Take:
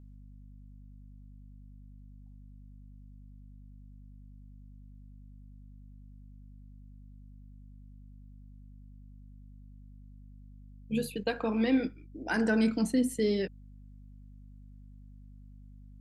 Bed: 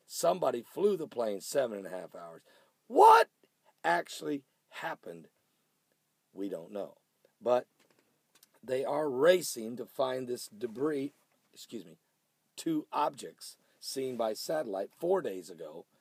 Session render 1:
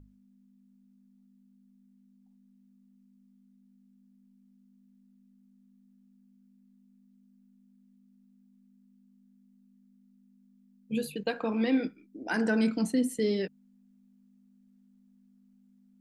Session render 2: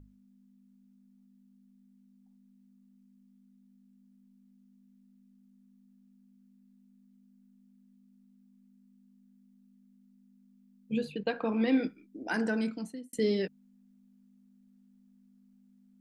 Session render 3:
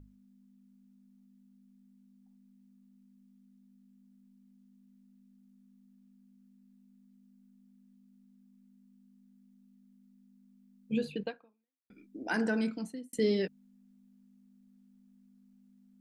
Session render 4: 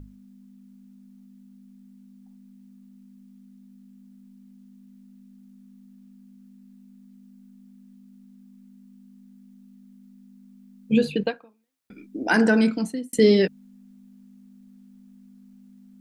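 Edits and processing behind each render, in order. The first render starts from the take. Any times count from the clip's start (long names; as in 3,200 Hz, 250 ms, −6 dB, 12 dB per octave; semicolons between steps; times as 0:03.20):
mains-hum notches 50/100/150 Hz
0:10.94–0:11.68: high-frequency loss of the air 110 metres; 0:12.19–0:13.13: fade out
0:11.24–0:11.90: fade out exponential
level +12 dB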